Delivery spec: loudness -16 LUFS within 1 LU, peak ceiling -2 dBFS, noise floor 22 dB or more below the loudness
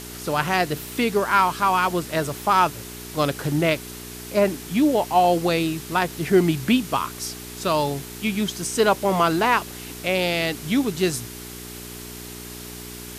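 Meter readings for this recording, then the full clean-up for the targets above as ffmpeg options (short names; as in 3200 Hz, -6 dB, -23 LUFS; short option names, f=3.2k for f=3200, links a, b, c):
hum 60 Hz; harmonics up to 420 Hz; hum level -38 dBFS; noise floor -37 dBFS; noise floor target -44 dBFS; loudness -22.0 LUFS; peak -5.0 dBFS; loudness target -16.0 LUFS
-> -af "bandreject=f=60:t=h:w=4,bandreject=f=120:t=h:w=4,bandreject=f=180:t=h:w=4,bandreject=f=240:t=h:w=4,bandreject=f=300:t=h:w=4,bandreject=f=360:t=h:w=4,bandreject=f=420:t=h:w=4"
-af "afftdn=nr=7:nf=-37"
-af "volume=6dB,alimiter=limit=-2dB:level=0:latency=1"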